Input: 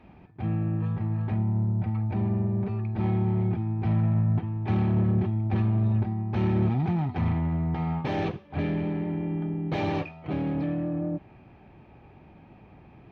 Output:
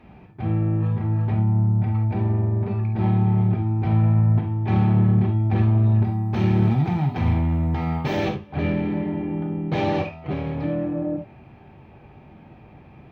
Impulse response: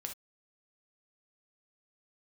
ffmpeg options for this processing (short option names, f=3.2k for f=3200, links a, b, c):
-filter_complex "[0:a]asettb=1/sr,asplit=3[a][b][c];[a]atrim=end=6.044[d];[b]atrim=start=6.04:end=8.29,asetpts=PTS-STARTPTS,afade=t=in:d=0.004:c=qsin,afade=t=out:st=2.246:d=0.004:c=qsin,aemphasis=mode=production:type=50fm[e];[c]atrim=start=8.286[f];[d][e]acrossfade=d=0.004:c1=hsin:c2=qsin[g];[g][f]acrossfade=d=0.004:c1=qsin:c2=hsin[h];[1:a]atrim=start_sample=2205[i];[h][i]afir=irnorm=-1:irlink=0,volume=6.5dB"